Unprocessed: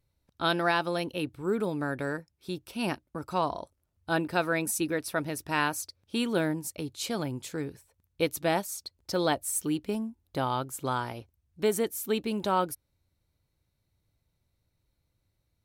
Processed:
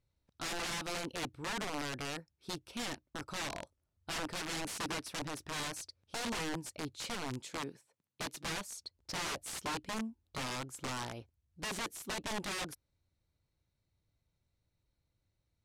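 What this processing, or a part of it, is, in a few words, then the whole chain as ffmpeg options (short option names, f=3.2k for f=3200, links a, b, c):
overflowing digital effects unit: -filter_complex "[0:a]asettb=1/sr,asplit=3[a][b][c];[a]atrim=end=7.404[d];[b]atrim=start=7.4:end=8.48,asetpts=PTS-STARTPTS,afade=t=in:d=0.004:c=qsin,afade=t=out:st=1.076:d=0.004:c=qsin,highpass=f=150:w=0.5412,highpass=f=150:w=1.3066[e];[c]atrim=start=8.476[f];[d][e]acrossfade=d=0.004:c1=hsin:c2=qsin[g];[g][f]acrossfade=d=0.004:c1=qsin:c2=hsin,aeval=exprs='(mod(22.4*val(0)+1,2)-1)/22.4':c=same,lowpass=8.3k,volume=-5dB"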